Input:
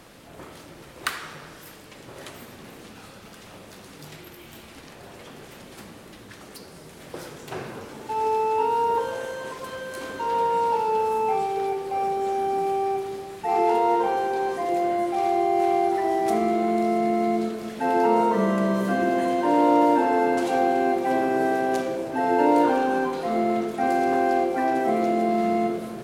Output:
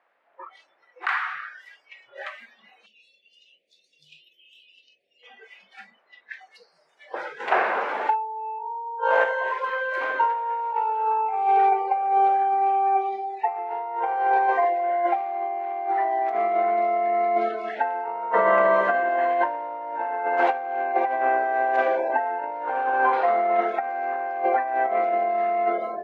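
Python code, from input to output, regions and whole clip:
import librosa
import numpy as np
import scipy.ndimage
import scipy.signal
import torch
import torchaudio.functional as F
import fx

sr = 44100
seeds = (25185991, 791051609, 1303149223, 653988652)

y = fx.chain(x, sr, fx.cheby1_bandstop(low_hz=510.0, high_hz=2600.0, order=3),
    fx.peak_eq(hz=440.0, db=-5.0, octaves=1.3), at=(2.86, 5.23))
y = fx.chain(y, sr, fx.over_compress(threshold_db=-31.0, ratio=-0.5),
    fx.peak_eq(hz=140.0, db=-7.5, octaves=0.31), at=(7.4, 9.24))
y = scipy.signal.sosfilt(scipy.signal.cheby1(2, 1.0, [680.0, 2000.0], 'bandpass', fs=sr, output='sos'), y)
y = fx.noise_reduce_blind(y, sr, reduce_db=26)
y = fx.over_compress(y, sr, threshold_db=-29.0, ratio=-0.5)
y = y * 10.0 ** (7.5 / 20.0)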